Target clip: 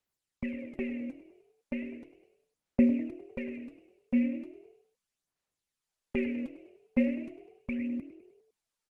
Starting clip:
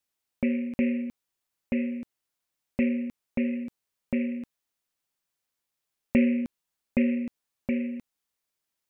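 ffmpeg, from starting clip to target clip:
-filter_complex "[0:a]aphaser=in_gain=1:out_gain=1:delay=4.1:decay=0.71:speed=0.37:type=sinusoidal,asplit=6[a][b][c][d][e][f];[b]adelay=101,afreqshift=40,volume=-15dB[g];[c]adelay=202,afreqshift=80,volume=-20.2dB[h];[d]adelay=303,afreqshift=120,volume=-25.4dB[i];[e]adelay=404,afreqshift=160,volume=-30.6dB[j];[f]adelay=505,afreqshift=200,volume=-35.8dB[k];[a][g][h][i][j][k]amix=inputs=6:normalize=0,volume=-7.5dB" -ar 48000 -c:a libopus -b:a 20k

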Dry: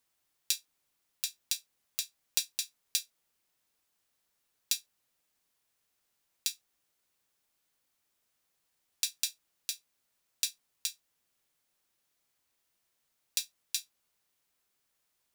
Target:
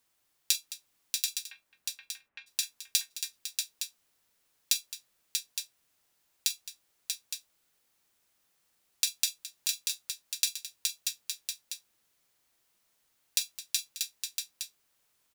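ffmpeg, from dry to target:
-filter_complex "[0:a]asplit=3[a][b][c];[a]afade=t=out:st=1.41:d=0.02[d];[b]lowpass=f=2k:w=0.5412,lowpass=f=2k:w=1.3066,afade=t=in:st=1.41:d=0.02,afade=t=out:st=2.46:d=0.02[e];[c]afade=t=in:st=2.46:d=0.02[f];[d][e][f]amix=inputs=3:normalize=0,aecho=1:1:43|215|637|864:0.168|0.178|0.562|0.376,volume=3.5dB"

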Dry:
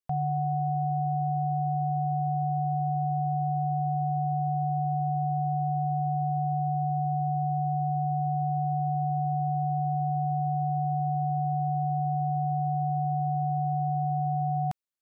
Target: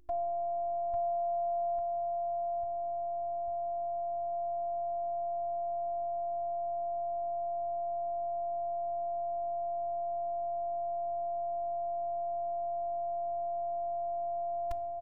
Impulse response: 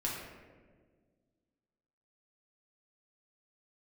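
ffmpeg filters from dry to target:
-filter_complex "[0:a]aecho=1:1:847|1694|2541|3388|4235|5082|5929:0.631|0.341|0.184|0.0994|0.0537|0.029|0.0156,asplit=2[a][b];[1:a]atrim=start_sample=2205[c];[b][c]afir=irnorm=-1:irlink=0,volume=-19dB[d];[a][d]amix=inputs=2:normalize=0,asubboost=boost=9:cutoff=67,aeval=exprs='val(0)+0.002*(sin(2*PI*50*n/s)+sin(2*PI*2*50*n/s)/2+sin(2*PI*3*50*n/s)/3+sin(2*PI*4*50*n/s)/4+sin(2*PI*5*50*n/s)/5)':c=same,afftfilt=real='hypot(re,im)*cos(PI*b)':imag='0':win_size=512:overlap=0.75"

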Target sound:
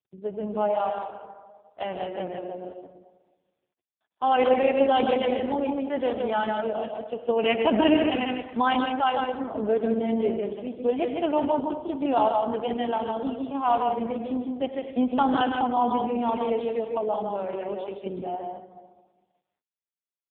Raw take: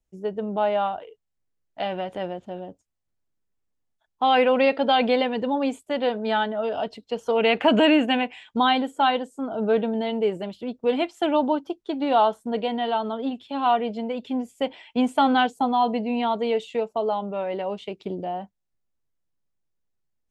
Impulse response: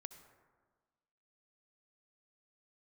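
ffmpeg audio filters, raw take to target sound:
-filter_complex "[0:a]asplit=3[a][b][c];[a]afade=t=out:st=6.56:d=0.02[d];[b]equalizer=f=87:t=o:w=0.41:g=-14.5,afade=t=in:st=6.56:d=0.02,afade=t=out:st=9.04:d=0.02[e];[c]afade=t=in:st=9.04:d=0.02[f];[d][e][f]amix=inputs=3:normalize=0,aecho=1:1:155:0.596,adynamicequalizer=threshold=0.00447:dfrequency=190:dqfactor=7.5:tfrequency=190:tqfactor=7.5:attack=5:release=100:ratio=0.375:range=2.5:mode=cutabove:tftype=bell[g];[1:a]atrim=start_sample=2205[h];[g][h]afir=irnorm=-1:irlink=0,volume=3.5dB" -ar 8000 -c:a libopencore_amrnb -b:a 4750

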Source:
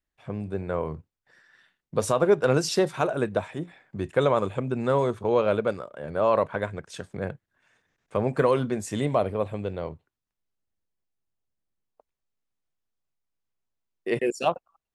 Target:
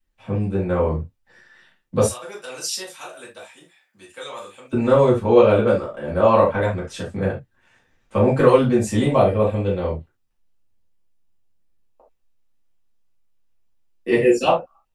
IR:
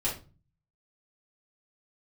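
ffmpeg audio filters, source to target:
-filter_complex "[0:a]asettb=1/sr,asplit=3[a][b][c];[a]atrim=end=2.054[d];[b]atrim=start=2.05:end=4.73,asetpts=PTS-STARTPTS,afade=t=in:d=0.004:c=qsin,afade=t=out:st=2.676:d=0.004:c=qsin,aderivative[e];[c]atrim=start=4.726[f];[d][e]acrossfade=d=0.004:c1=hsin:c2=qsin[g];[g][f]acrossfade=d=0.004:c1=qsin:c2=hsin[h];[1:a]atrim=start_sample=2205,atrim=end_sample=3969[i];[h][i]afir=irnorm=-1:irlink=0,volume=1dB"

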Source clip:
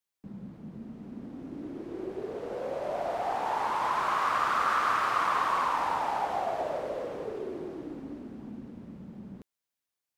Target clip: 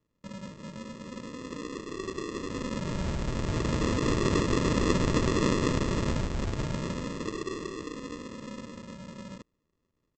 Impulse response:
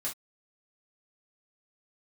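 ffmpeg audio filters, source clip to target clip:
-af "highshelf=f=2.2k:t=q:w=3:g=11,aresample=16000,acrusher=samples=21:mix=1:aa=0.000001,aresample=44100,volume=1.5dB"

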